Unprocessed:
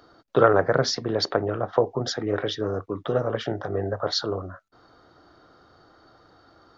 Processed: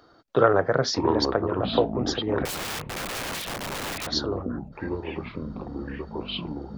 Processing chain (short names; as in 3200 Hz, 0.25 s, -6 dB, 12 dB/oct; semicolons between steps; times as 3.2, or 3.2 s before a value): echoes that change speed 0.452 s, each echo -6 st, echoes 3, each echo -6 dB; 2.45–4.07 wrapped overs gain 25.5 dB; gain -1.5 dB